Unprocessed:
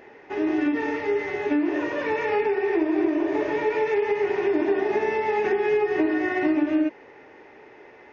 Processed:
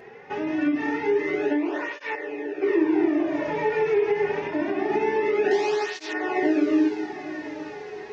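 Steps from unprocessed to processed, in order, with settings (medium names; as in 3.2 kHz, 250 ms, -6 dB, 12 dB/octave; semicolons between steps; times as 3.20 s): 5.51–6.13 s: one-bit delta coder 32 kbps, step -25.5 dBFS; peaking EQ 160 Hz +5.5 dB 0.27 oct; in parallel at -1.5 dB: compression, threshold -31 dBFS, peak gain reduction 13 dB; 2.15–2.62 s: on the sum: vowel filter e; on a send: echo that smears into a reverb 925 ms, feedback 59%, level -10.5 dB; on the sum: cancelling through-zero flanger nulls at 0.25 Hz, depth 3.5 ms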